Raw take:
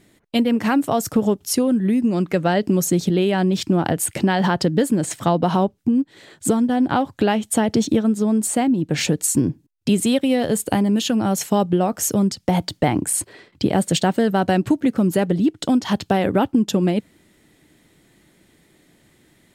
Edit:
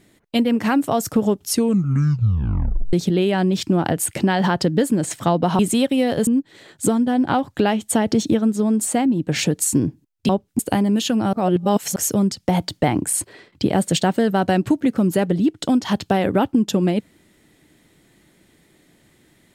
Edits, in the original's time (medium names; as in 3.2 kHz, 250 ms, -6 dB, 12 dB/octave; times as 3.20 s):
1.50 s: tape stop 1.43 s
5.59–5.89 s: swap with 9.91–10.59 s
11.33–11.96 s: reverse